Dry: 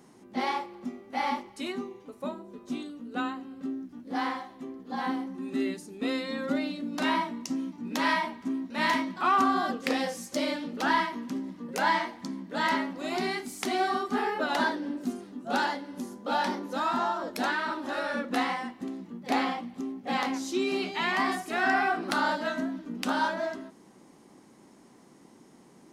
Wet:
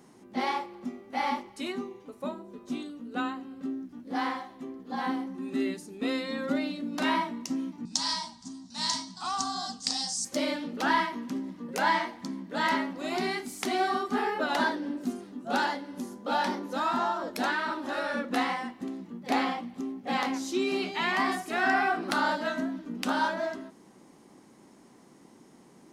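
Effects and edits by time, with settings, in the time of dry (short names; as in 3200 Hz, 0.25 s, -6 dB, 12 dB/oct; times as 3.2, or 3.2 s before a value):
7.85–10.25 EQ curve 150 Hz 0 dB, 520 Hz -26 dB, 760 Hz -5 dB, 1500 Hz -13 dB, 2400 Hz -15 dB, 4800 Hz +13 dB, 8700 Hz +12 dB, 13000 Hz -20 dB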